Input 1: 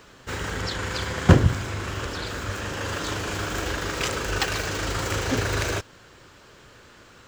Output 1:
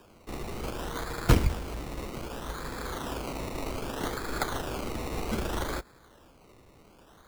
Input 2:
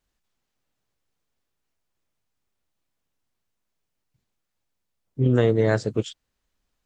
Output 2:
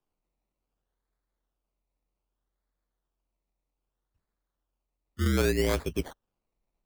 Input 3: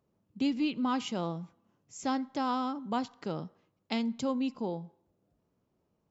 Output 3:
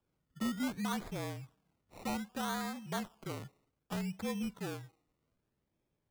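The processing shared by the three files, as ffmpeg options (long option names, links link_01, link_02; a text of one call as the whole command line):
ffmpeg -i in.wav -af "acrusher=samples=21:mix=1:aa=0.000001:lfo=1:lforange=12.6:lforate=0.64,afreqshift=-45,volume=-6dB" out.wav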